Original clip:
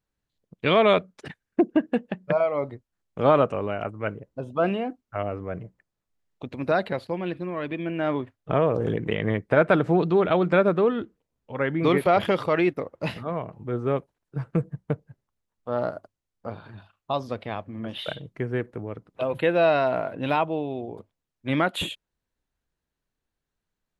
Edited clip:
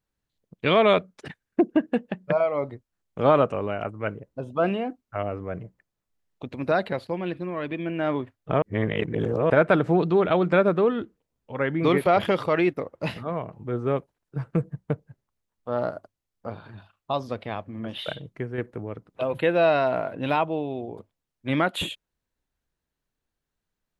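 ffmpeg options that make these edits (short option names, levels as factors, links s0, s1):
-filter_complex "[0:a]asplit=4[s0][s1][s2][s3];[s0]atrim=end=8.622[s4];[s1]atrim=start=8.618:end=9.502,asetpts=PTS-STARTPTS,areverse[s5];[s2]atrim=start=9.498:end=18.58,asetpts=PTS-STARTPTS,afade=t=out:st=8.802:d=0.28:silence=0.473151[s6];[s3]atrim=start=18.58,asetpts=PTS-STARTPTS,afade=t=in:d=0.004:c=hsin:silence=0.473151[s7];[s4][s5]acrossfade=d=0.004:c1=hsin:c2=hsin[s8];[s6][s7]concat=n=2:v=0:a=1[s9];[s8][s9]acrossfade=d=0.004:c1=hsin:c2=hsin"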